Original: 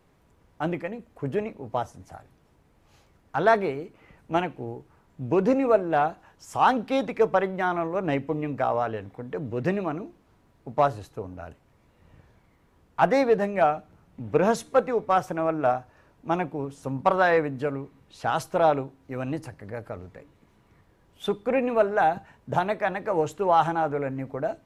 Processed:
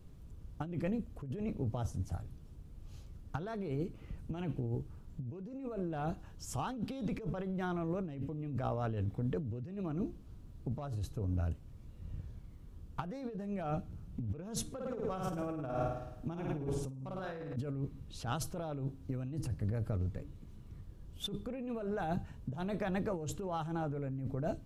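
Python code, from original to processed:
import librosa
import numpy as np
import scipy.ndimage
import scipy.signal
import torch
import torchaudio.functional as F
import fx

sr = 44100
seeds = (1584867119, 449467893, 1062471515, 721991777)

y = fx.room_flutter(x, sr, wall_m=9.1, rt60_s=0.83, at=(14.73, 17.56))
y = fx.tone_stack(y, sr, knobs='10-0-1')
y = fx.over_compress(y, sr, threshold_db=-54.0, ratio=-1.0)
y = fx.curve_eq(y, sr, hz=(400.0, 1200.0, 2000.0, 3000.0), db=(0, 4, -6, -1))
y = y * 10.0 ** (16.0 / 20.0)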